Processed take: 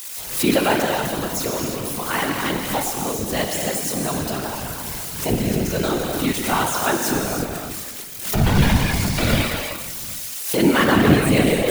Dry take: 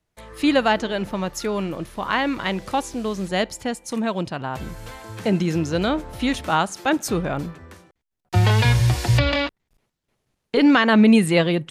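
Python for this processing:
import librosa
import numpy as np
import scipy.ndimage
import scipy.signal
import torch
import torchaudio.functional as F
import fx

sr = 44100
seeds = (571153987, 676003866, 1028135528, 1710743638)

p1 = x + 0.5 * 10.0 ** (-19.5 / 20.0) * np.diff(np.sign(x), prepend=np.sign(x[:1]))
p2 = p1 + fx.echo_stepped(p1, sr, ms=190, hz=2700.0, octaves=-1.4, feedback_pct=70, wet_db=-11.0, dry=0)
p3 = fx.rev_gated(p2, sr, seeds[0], gate_ms=370, shape='flat', drr_db=0.0)
p4 = fx.whisperise(p3, sr, seeds[1])
p5 = fx.pre_swell(p4, sr, db_per_s=88.0)
y = F.gain(torch.from_numpy(p5), -3.0).numpy()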